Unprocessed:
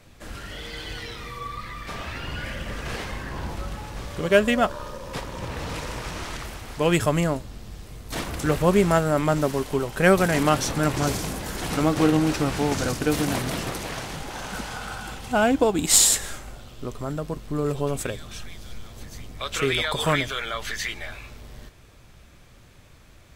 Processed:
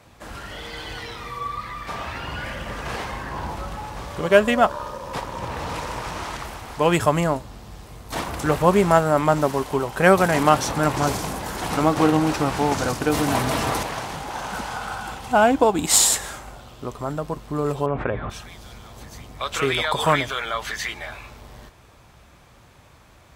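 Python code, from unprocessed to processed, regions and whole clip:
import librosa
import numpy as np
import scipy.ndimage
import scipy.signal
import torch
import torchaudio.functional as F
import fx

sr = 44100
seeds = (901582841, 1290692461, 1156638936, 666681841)

y = fx.chain(x, sr, fx.notch_comb(f0_hz=180.0),
    fx.env_flatten(amount_pct=50), at=(13.09, 13.83))
y = fx.chain(y, sr, fx.lowpass(hz=2100.0, slope=24),
    fx.env_flatten(amount_pct=70), at=(17.86, 18.3))
y = scipy.signal.sosfilt(scipy.signal.butter(2, 42.0, 'highpass', fs=sr, output='sos'), y)
y = fx.peak_eq(y, sr, hz=910.0, db=8.0, octaves=1.1)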